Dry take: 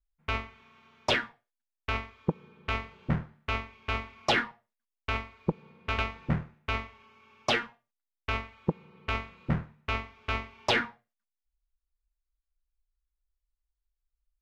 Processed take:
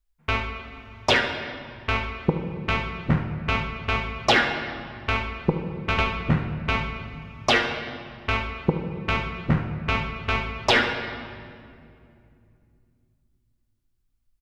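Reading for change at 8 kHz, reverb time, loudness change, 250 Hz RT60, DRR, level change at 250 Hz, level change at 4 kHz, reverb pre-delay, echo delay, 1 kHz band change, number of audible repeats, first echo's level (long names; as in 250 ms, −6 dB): +7.0 dB, 2.5 s, +7.0 dB, 3.8 s, 4.5 dB, +8.0 dB, +7.5 dB, 3 ms, 74 ms, +7.5 dB, 1, −12.5 dB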